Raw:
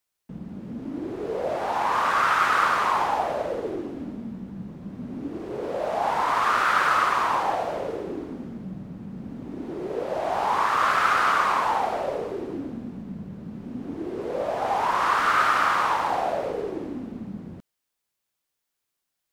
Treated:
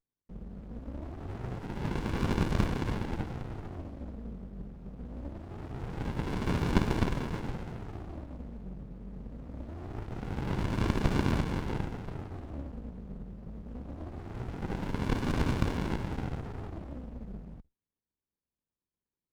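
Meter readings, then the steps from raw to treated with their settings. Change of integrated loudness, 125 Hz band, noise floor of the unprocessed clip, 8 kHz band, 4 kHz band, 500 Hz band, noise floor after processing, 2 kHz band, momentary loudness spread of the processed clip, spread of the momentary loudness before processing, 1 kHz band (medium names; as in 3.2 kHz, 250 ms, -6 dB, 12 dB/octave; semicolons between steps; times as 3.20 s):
-11.5 dB, +8.0 dB, -82 dBFS, -10.5 dB, -10.5 dB, -11.5 dB, under -85 dBFS, -16.5 dB, 15 LU, 17 LU, -20.0 dB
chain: octave divider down 2 oct, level +2 dB; Chebyshev shaper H 3 -14 dB, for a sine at -8 dBFS; sliding maximum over 65 samples; trim -1 dB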